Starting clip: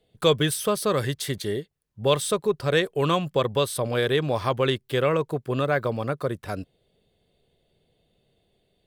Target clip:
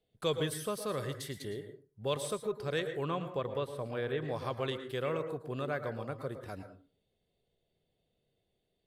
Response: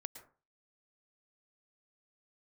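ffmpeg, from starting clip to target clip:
-filter_complex "[0:a]asettb=1/sr,asplit=3[s0][s1][s2];[s0]atrim=end=2.924[s3];[s1]atrim=start=2.92:end=4.29,asetpts=PTS-STARTPTS,afade=t=in:d=0.004:c=qsin,afade=t=out:st=1.366:d=0.004:c=qsin,acrossover=split=2900[s4][s5];[s5]acompressor=threshold=0.00447:ratio=4:attack=1:release=60[s6];[s4][s6]amix=inputs=2:normalize=0[s7];[s2]atrim=start=4.286[s8];[s3][s7]acrossfade=d=0.004:c1=hsin:c2=qsin[s9];[s9][s8]acrossfade=d=0.004:c1=qsin:c2=hsin[s10];[1:a]atrim=start_sample=2205[s11];[s10][s11]afir=irnorm=-1:irlink=0,volume=0.398" -ar 32000 -c:a libvorbis -b:a 96k

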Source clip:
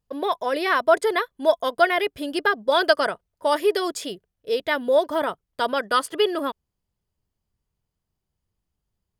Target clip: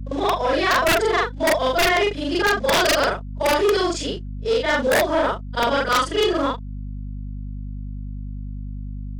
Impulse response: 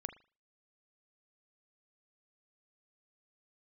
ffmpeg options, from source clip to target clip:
-filter_complex "[0:a]afftfilt=real='re':imag='-im':win_size=4096:overlap=0.75,acrossover=split=580|1000[s0][s1][s2];[s0]acrusher=bits=4:mode=log:mix=0:aa=0.000001[s3];[s3][s1][s2]amix=inputs=3:normalize=0,agate=range=0.355:threshold=0.01:ratio=16:detection=peak,aeval=exprs='(mod(6.68*val(0)+1,2)-1)/6.68':c=same,aeval=exprs='val(0)+0.00794*(sin(2*PI*50*n/s)+sin(2*PI*2*50*n/s)/2+sin(2*PI*3*50*n/s)/3+sin(2*PI*4*50*n/s)/4+sin(2*PI*5*50*n/s)/5)':c=same,lowpass=f=7300:w=0.5412,lowpass=f=7300:w=1.3066,aeval=exprs='0.2*sin(PI/2*2*val(0)/0.2)':c=same,acompressor=mode=upward:threshold=0.0562:ratio=2.5"

